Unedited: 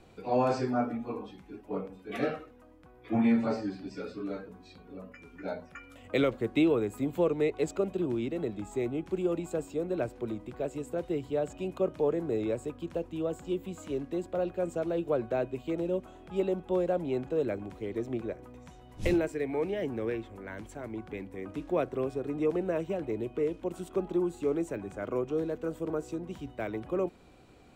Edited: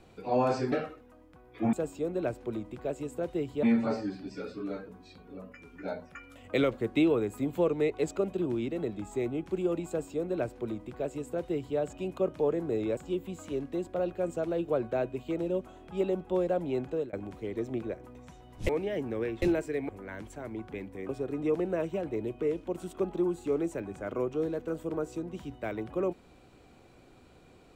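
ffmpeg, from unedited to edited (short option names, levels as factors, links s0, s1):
-filter_complex "[0:a]asplit=10[s0][s1][s2][s3][s4][s5][s6][s7][s8][s9];[s0]atrim=end=0.722[s10];[s1]atrim=start=2.218:end=3.232[s11];[s2]atrim=start=9.478:end=11.382[s12];[s3]atrim=start=3.228:end=12.572[s13];[s4]atrim=start=13.358:end=17.52,asetpts=PTS-STARTPTS,afade=t=out:st=3.892:d=0.27:c=qsin[s14];[s5]atrim=start=17.52:end=19.082,asetpts=PTS-STARTPTS,afade=t=in:d=0.004:c=hsin[s15];[s6]atrim=start=19.548:end=20.282[s16];[s7]atrim=start=19.078:end=19.552[s17];[s8]atrim=start=20.278:end=21.482[s18];[s9]atrim=start=22.048[s19];[s10][s11]acrossfade=d=0.004:c1=hsin:c2=hsin[s20];[s20][s12]acrossfade=d=0.004:c1=hsin:c2=hsin[s21];[s21][s13]acrossfade=d=0.004:c1=hsin:c2=hsin[s22];[s14][s15]concat=n=2:v=0:a=1[s23];[s22][s23]acrossfade=d=0.004:c1=hsin:c2=hsin[s24];[s24][s16]acrossfade=d=0.004:c1=hsin:c2=hsin[s25];[s25][s17]acrossfade=d=0.004:c1=hsin:c2=hsin[s26];[s26][s18]acrossfade=d=0.004:c1=hsin:c2=hsin[s27];[s27][s19]acrossfade=d=0.004:c1=hsin:c2=hsin"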